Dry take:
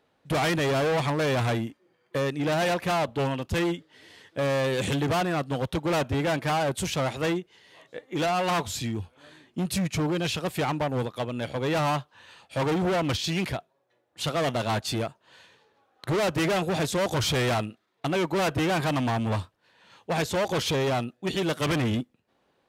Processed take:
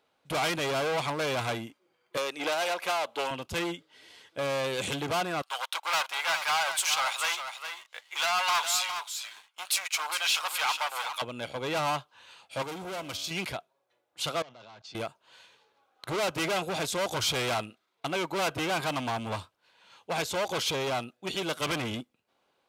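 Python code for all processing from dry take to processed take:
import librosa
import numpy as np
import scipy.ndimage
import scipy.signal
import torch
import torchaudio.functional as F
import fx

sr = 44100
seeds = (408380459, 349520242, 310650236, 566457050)

y = fx.chain(x, sr, fx.highpass(hz=450.0, slope=12),
    fx.band_squash(depth_pct=100), at=(2.17, 3.31))
y = fx.chain(y, sr, fx.highpass(hz=900.0, slope=24),
    fx.leveller(passes=2),
    fx.echo_single(ms=410, db=-8.5), at=(5.42, 11.22))
y = fx.chain(y, sr, fx.high_shelf(hz=7000.0, db=10.0),
    fx.comb_fb(f0_hz=95.0, decay_s=1.8, harmonics='all', damping=0.0, mix_pct=60), at=(12.62, 13.31))
y = fx.chain(y, sr, fx.cheby1_bandpass(low_hz=110.0, high_hz=5700.0, order=3),
    fx.level_steps(step_db=23), at=(14.42, 14.95))
y = fx.low_shelf(y, sr, hz=420.0, db=-12.0)
y = fx.notch(y, sr, hz=1800.0, q=7.6)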